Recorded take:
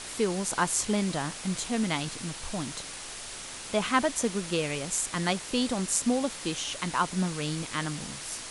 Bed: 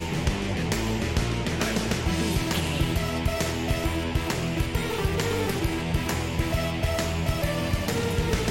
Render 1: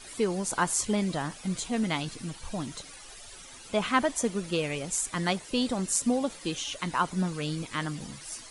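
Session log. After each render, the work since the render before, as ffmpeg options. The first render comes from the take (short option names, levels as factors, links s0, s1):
-af "afftdn=nr=13:nf=-41"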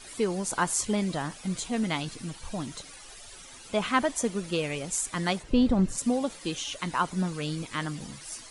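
-filter_complex "[0:a]asplit=3[s0][s1][s2];[s0]afade=t=out:st=5.42:d=0.02[s3];[s1]aemphasis=mode=reproduction:type=riaa,afade=t=in:st=5.42:d=0.02,afade=t=out:st=5.97:d=0.02[s4];[s2]afade=t=in:st=5.97:d=0.02[s5];[s3][s4][s5]amix=inputs=3:normalize=0"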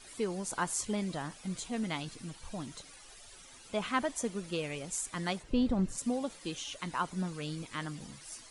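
-af "volume=0.473"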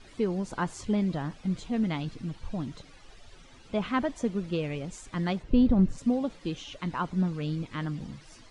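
-af "lowpass=4400,lowshelf=f=390:g=10.5"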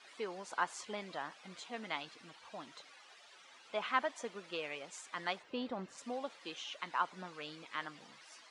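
-af "highpass=820,highshelf=f=4600:g=-5"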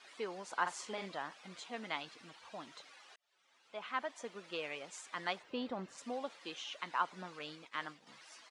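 -filter_complex "[0:a]asplit=3[s0][s1][s2];[s0]afade=t=out:st=0.65:d=0.02[s3];[s1]asplit=2[s4][s5];[s5]adelay=46,volume=0.501[s6];[s4][s6]amix=inputs=2:normalize=0,afade=t=in:st=0.65:d=0.02,afade=t=out:st=1.08:d=0.02[s7];[s2]afade=t=in:st=1.08:d=0.02[s8];[s3][s7][s8]amix=inputs=3:normalize=0,asettb=1/sr,asplit=3[s9][s10][s11];[s9]atrim=end=7.394[s12];[s10]atrim=start=7.39:end=8.07,asetpts=PTS-STARTPTS,afade=t=in:d=0.004:c=qsin,afade=t=out:st=0.676:d=0.004:c=qsin,agate=range=0.0224:threshold=0.00316:ratio=3:release=100:detection=peak[s13];[s11]atrim=start=8.066[s14];[s12][s13]acrossfade=d=0.004:c1=hsin:c2=qsin[s15];[s15][s14]acrossfade=d=0.004:c1=qsin:c2=hsin,asplit=2[s16][s17];[s16]atrim=end=3.16,asetpts=PTS-STARTPTS,afade=t=out:st=3.156:d=0.004:c=hsin[s18];[s17]atrim=start=3.16,asetpts=PTS-STARTPTS,afade=t=in:d=1.47[s19];[s18][s19]concat=n=2:v=0:a=1"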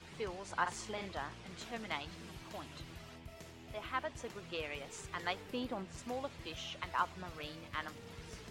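-filter_complex "[1:a]volume=0.0501[s0];[0:a][s0]amix=inputs=2:normalize=0"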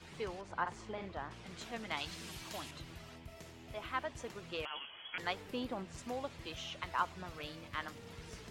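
-filter_complex "[0:a]asettb=1/sr,asplit=3[s0][s1][s2];[s0]atrim=end=0.414[s3];[s1]atrim=start=0.41:end=1.31,asetpts=PTS-STARTPTS,afade=t=in:d=0.004:c=qsin,afade=t=out:st=0.896:d=0.004:c=qsin,equalizer=f=12000:t=o:w=2.7:g=-14.5[s4];[s2]atrim=start=1.306[s5];[s3][s4]acrossfade=d=0.004:c1=hsin:c2=qsin[s6];[s6][s5]acrossfade=d=0.004:c1=qsin:c2=hsin,asettb=1/sr,asplit=3[s7][s8][s9];[s7]atrim=end=1.974[s10];[s8]atrim=start=1.97:end=2.71,asetpts=PTS-STARTPTS,afade=t=in:d=0.004:c=qsin,afade=t=out:st=0.736:d=0.004:c=qsin,highshelf=f=2300:g=10[s11];[s9]atrim=start=2.706[s12];[s10][s11]acrossfade=d=0.004:c1=hsin:c2=qsin[s13];[s13][s12]acrossfade=d=0.004:c1=qsin:c2=hsin,asettb=1/sr,asplit=3[s14][s15][s16];[s14]atrim=end=4.654[s17];[s15]atrim=start=4.65:end=5.18,asetpts=PTS-STARTPTS,afade=t=in:d=0.004:c=qsin,afade=t=out:st=0.526:d=0.004:c=qsin,lowpass=f=2900:t=q:w=0.5098,lowpass=f=2900:t=q:w=0.6013,lowpass=f=2900:t=q:w=0.9,lowpass=f=2900:t=q:w=2.563,afreqshift=-3400[s18];[s16]atrim=start=5.176[s19];[s17][s18]acrossfade=d=0.004:c1=hsin:c2=qsin[s20];[s20][s19]acrossfade=d=0.004:c1=qsin:c2=hsin"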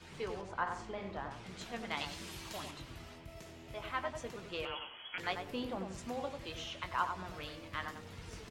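-filter_complex "[0:a]asplit=2[s0][s1];[s1]adelay=21,volume=0.282[s2];[s0][s2]amix=inputs=2:normalize=0,asplit=2[s3][s4];[s4]adelay=95,lowpass=f=1300:p=1,volume=0.596,asplit=2[s5][s6];[s6]adelay=95,lowpass=f=1300:p=1,volume=0.29,asplit=2[s7][s8];[s8]adelay=95,lowpass=f=1300:p=1,volume=0.29,asplit=2[s9][s10];[s10]adelay=95,lowpass=f=1300:p=1,volume=0.29[s11];[s5][s7][s9][s11]amix=inputs=4:normalize=0[s12];[s3][s12]amix=inputs=2:normalize=0"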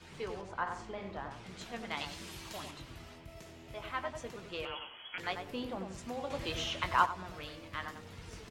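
-filter_complex "[0:a]asettb=1/sr,asplit=3[s0][s1][s2];[s0]atrim=end=6.304[s3];[s1]atrim=start=6.3:end=7.06,asetpts=PTS-STARTPTS,afade=t=in:d=0.004:c=qsin,afade=t=out:st=0.756:d=0.004:c=qsin,acontrast=82[s4];[s2]atrim=start=7.056[s5];[s3][s4]acrossfade=d=0.004:c1=hsin:c2=qsin[s6];[s6][s5]acrossfade=d=0.004:c1=qsin:c2=hsin"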